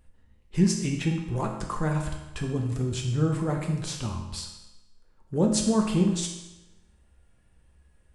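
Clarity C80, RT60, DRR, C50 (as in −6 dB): 7.5 dB, 1.0 s, 1.0 dB, 5.5 dB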